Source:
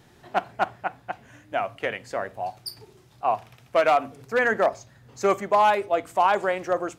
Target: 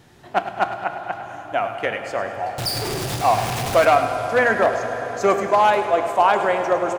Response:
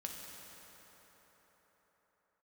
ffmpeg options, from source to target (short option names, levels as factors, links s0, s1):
-filter_complex "[0:a]asettb=1/sr,asplit=3[s0][s1][s2];[s0]atrim=end=2.584[s3];[s1]atrim=start=2.58:end=3.85,asetpts=PTS-STARTPTS,afade=t=in:d=0.004:c=qsin,afade=t=out:st=1.266:d=0.004:c=qsin,aeval=exprs='val(0)+0.5*0.0596*sgn(val(0))':c=same[s4];[s2]atrim=start=3.846[s5];[s3][s4]acrossfade=d=0.004:c1=hsin:c2=qsin[s6];[s6][s5]acrossfade=d=0.004:c1=qsin:c2=hsin,aecho=1:1:103|206|309|412|515|618:0.251|0.143|0.0816|0.0465|0.0265|0.0151,asplit=2[s7][s8];[1:a]atrim=start_sample=2205,asetrate=23814,aresample=44100[s9];[s8][s9]afir=irnorm=-1:irlink=0,volume=0.596[s10];[s7][s10]amix=inputs=2:normalize=0"